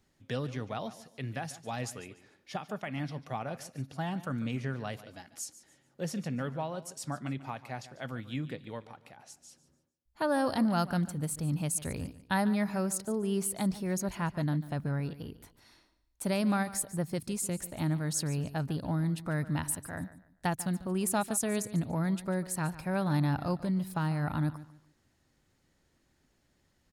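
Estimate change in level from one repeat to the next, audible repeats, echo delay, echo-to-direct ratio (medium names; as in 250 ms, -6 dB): -11.0 dB, 2, 145 ms, -15.5 dB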